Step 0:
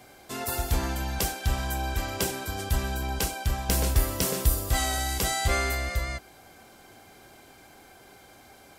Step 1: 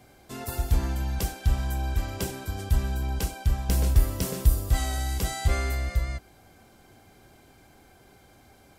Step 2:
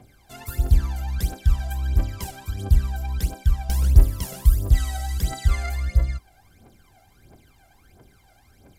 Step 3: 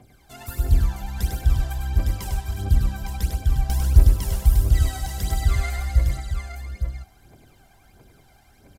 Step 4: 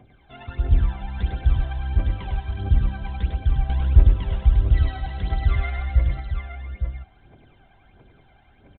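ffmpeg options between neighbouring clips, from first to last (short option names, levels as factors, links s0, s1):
-af "lowshelf=f=250:g=10.5,volume=0.501"
-af "aphaser=in_gain=1:out_gain=1:delay=1.5:decay=0.76:speed=1.5:type=triangular,volume=0.562"
-af "aecho=1:1:101|294|299|858:0.596|0.15|0.141|0.473,volume=0.891"
-af "aresample=8000,aresample=44100"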